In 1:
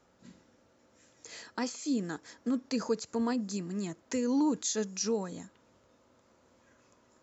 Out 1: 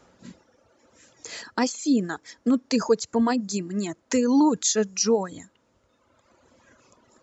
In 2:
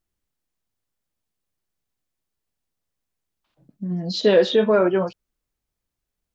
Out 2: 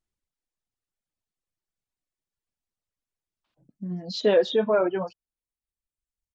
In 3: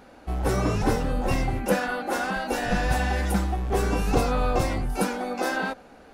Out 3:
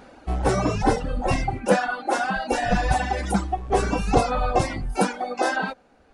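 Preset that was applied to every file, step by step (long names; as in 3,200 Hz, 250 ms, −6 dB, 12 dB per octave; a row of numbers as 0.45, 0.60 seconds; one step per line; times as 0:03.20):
reverb reduction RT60 1.7 s
dynamic equaliser 750 Hz, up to +5 dB, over −38 dBFS, Q 1.9
downsampling to 22,050 Hz
loudness normalisation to −24 LKFS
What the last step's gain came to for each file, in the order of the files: +10.0, −5.0, +3.5 decibels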